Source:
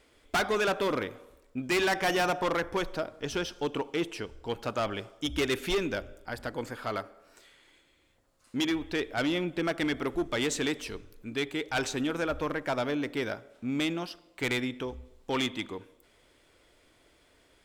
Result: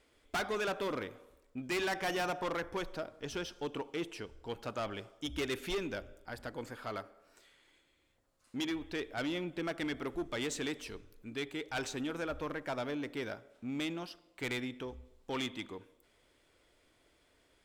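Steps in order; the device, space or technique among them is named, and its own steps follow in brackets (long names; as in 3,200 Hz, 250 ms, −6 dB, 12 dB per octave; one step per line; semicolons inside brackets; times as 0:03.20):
parallel distortion (in parallel at −13 dB: hard clipping −34.5 dBFS, distortion −6 dB)
on the sum: level −8 dB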